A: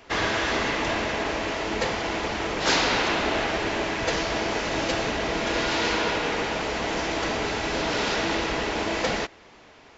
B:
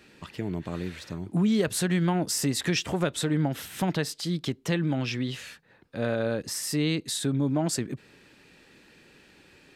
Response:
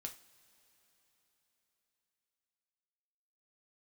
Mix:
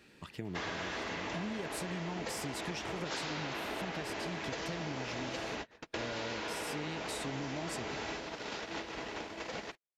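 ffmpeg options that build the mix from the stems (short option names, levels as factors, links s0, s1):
-filter_complex "[0:a]highpass=f=84:p=1,adelay=450,volume=0.596[s0];[1:a]volume=0.531,asplit=2[s1][s2];[s2]apad=whole_len=459682[s3];[s0][s3]sidechaingate=range=0.00282:threshold=0.00112:ratio=16:detection=peak[s4];[s4][s1]amix=inputs=2:normalize=0,acompressor=threshold=0.0158:ratio=6"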